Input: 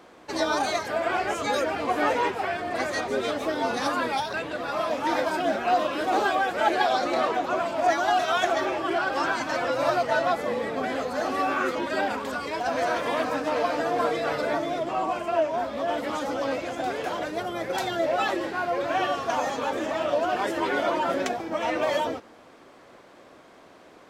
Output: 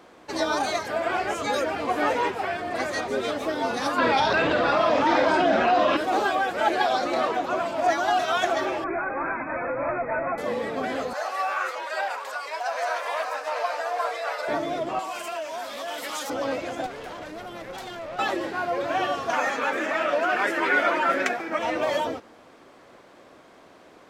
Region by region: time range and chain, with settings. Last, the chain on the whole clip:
3.98–5.97 LPF 5000 Hz + doubler 50 ms -7.5 dB + fast leveller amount 70%
8.84–10.38 notch 730 Hz, Q 19 + tube stage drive 21 dB, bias 0.25 + brick-wall FIR low-pass 2600 Hz
11.13–14.48 HPF 600 Hz 24 dB/oct + bell 3300 Hz -4.5 dB 0.28 oct
14.99–16.3 compressor 2.5:1, threshold -29 dBFS + tilt +4.5 dB/oct
16.86–18.19 compressor 2:1, threshold -29 dBFS + tube stage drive 32 dB, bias 0.8
19.33–21.59 HPF 200 Hz + band shelf 1800 Hz +9 dB 1.2 oct
whole clip: dry

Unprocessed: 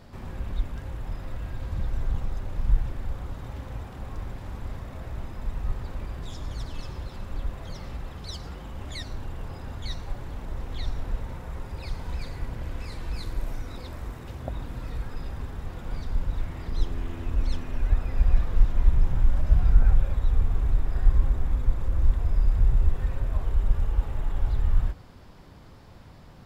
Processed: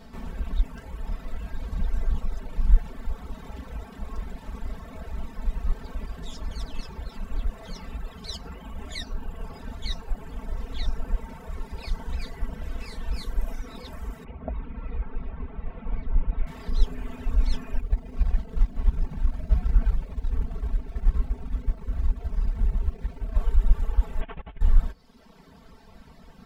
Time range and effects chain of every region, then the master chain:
14.24–16.47 Chebyshev low-pass 2400 Hz, order 3 + bell 1700 Hz -6 dB 0.32 oct
17.8–23.36 median filter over 41 samples + HPF 61 Hz 6 dB/oct + bell 530 Hz -4 dB 0.37 oct
24.21–24.61 delta modulation 16 kbps, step -39 dBFS + low shelf 70 Hz -10 dB + negative-ratio compressor -34 dBFS, ratio -0.5
whole clip: reverb removal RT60 1.2 s; comb 4.5 ms, depth 95%

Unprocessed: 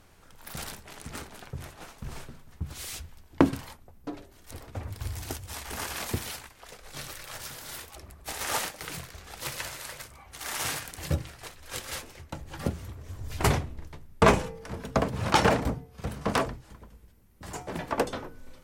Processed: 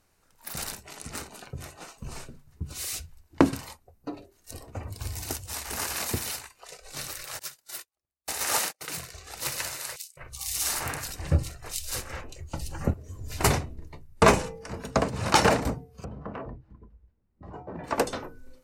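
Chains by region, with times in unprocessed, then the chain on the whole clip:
7.39–9.02 gate -41 dBFS, range -36 dB + low shelf 120 Hz -4.5 dB
9.96–12.94 low shelf 95 Hz +12 dB + bands offset in time highs, lows 0.21 s, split 2600 Hz
16.04–17.84 compressor 4:1, threshold -32 dBFS + tape spacing loss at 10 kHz 41 dB
whole clip: notch 3300 Hz, Q 11; spectral noise reduction 12 dB; tone controls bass -2 dB, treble +5 dB; gain +1.5 dB

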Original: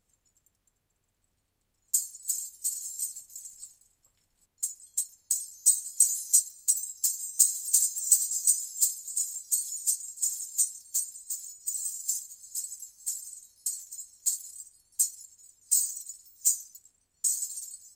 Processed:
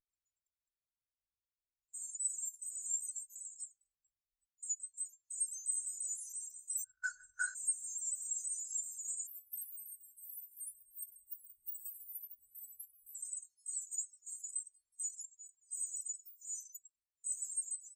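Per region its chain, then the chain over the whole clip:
6.84–7.55 synth low-pass 1500 Hz, resonance Q 12 + sample leveller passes 3
9.27–13.15 G.711 law mismatch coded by mu + inverse Chebyshev band-stop 1000–6600 Hz + repeats that get brighter 0.149 s, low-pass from 750 Hz, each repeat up 1 oct, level -6 dB
whole clip: limiter -38.5 dBFS; spectral expander 2.5:1; gain +13.5 dB

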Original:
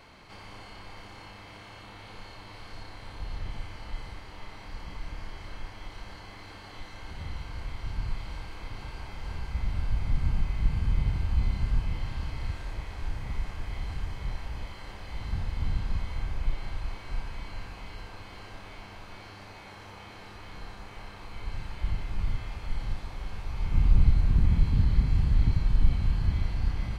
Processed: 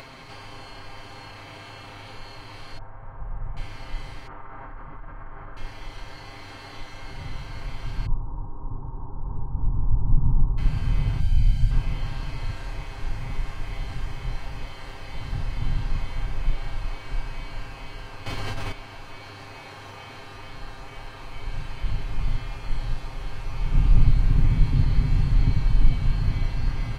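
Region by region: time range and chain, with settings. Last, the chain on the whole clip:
2.78–3.57 LPF 1400 Hz 24 dB/oct + bell 310 Hz -10.5 dB 1 oct
4.27–5.57 ladder low-pass 1600 Hz, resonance 45% + fast leveller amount 70%
8.06–10.58 elliptic low-pass 980 Hz, stop band 70 dB + comb 0.8 ms, depth 64%
11.2–11.71 bell 960 Hz -12.5 dB 2.3 oct + comb 1.3 ms, depth 81%
18.26–18.72 tone controls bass +6 dB, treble +3 dB + fast leveller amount 100%
whole clip: comb 7.5 ms; upward compressor, threshold -39 dBFS; gain +2.5 dB

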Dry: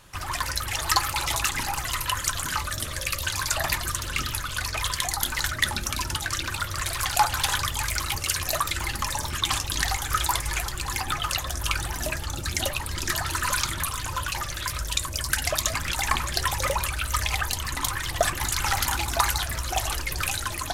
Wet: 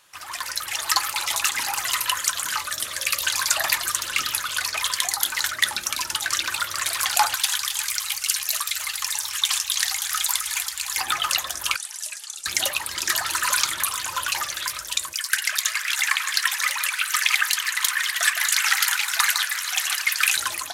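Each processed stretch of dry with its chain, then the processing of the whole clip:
7.35–10.97 passive tone stack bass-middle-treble 10-0-10 + echo 0.265 s -9.5 dB
11.76–12.46 LPF 10000 Hz 24 dB/oct + differentiator
15.13–20.37 resonant high-pass 1700 Hz, resonance Q 1.8 + echo with dull and thin repeats by turns 0.159 s, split 1700 Hz, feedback 54%, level -7.5 dB
whole clip: HPF 1300 Hz 6 dB/oct; AGC gain up to 9.5 dB; gain -1 dB

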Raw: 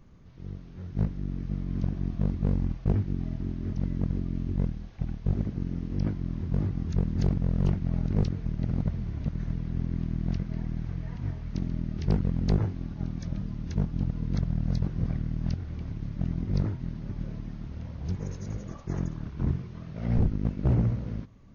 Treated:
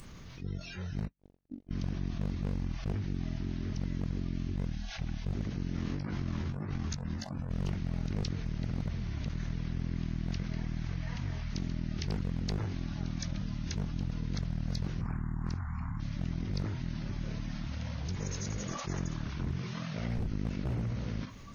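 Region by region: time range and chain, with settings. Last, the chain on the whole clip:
1–1.71 gate -26 dBFS, range -59 dB + compressor 1.5:1, threshold -34 dBFS
5.74–7.51 dynamic EQ 1100 Hz, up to +6 dB, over -50 dBFS, Q 0.82 + negative-ratio compressor -32 dBFS, ratio -0.5 + doubler 14 ms -6 dB
15.01–16 EQ curve 230 Hz 0 dB, 480 Hz -17 dB, 990 Hz +11 dB, 3100 Hz -12 dB, 7000 Hz -5 dB + Doppler distortion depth 0.67 ms
whole clip: tilt shelf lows -7 dB, about 1400 Hz; spectral noise reduction 22 dB; fast leveller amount 70%; gain -5 dB

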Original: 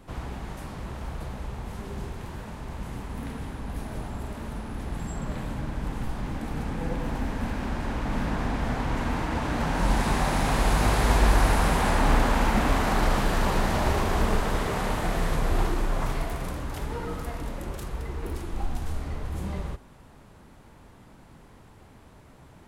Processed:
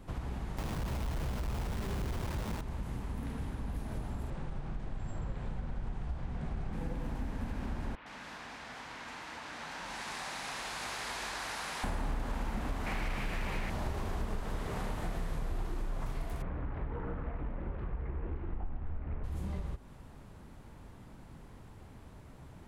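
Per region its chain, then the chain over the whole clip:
0.58–2.61 LPF 1300 Hz 24 dB/oct + companded quantiser 2-bit
4.3–6.73 brick-wall FIR low-pass 10000 Hz + high shelf 6700 Hz -12 dB + frequency shift -73 Hz
7.95–11.84 band-pass 3900 Hz, Q 0.78 + bands offset in time lows, highs 0.11 s, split 3200 Hz
12.86–13.7 bell 2300 Hz +13 dB 0.72 oct + hard clip -17 dBFS
16.42–19.24 LPF 2200 Hz 24 dB/oct + Doppler distortion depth 0.54 ms
whole clip: low shelf 210 Hz +6 dB; compressor 4:1, threshold -30 dBFS; gain -4 dB

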